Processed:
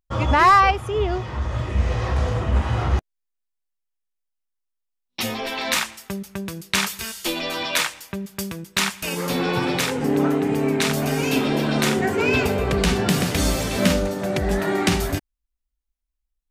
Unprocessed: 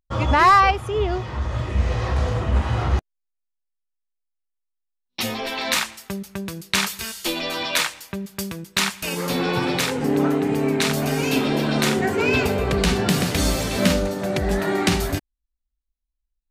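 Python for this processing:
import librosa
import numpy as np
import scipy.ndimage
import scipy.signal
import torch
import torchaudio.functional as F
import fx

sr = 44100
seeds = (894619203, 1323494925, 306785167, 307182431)

y = fx.peak_eq(x, sr, hz=4200.0, db=-2.5, octaves=0.27)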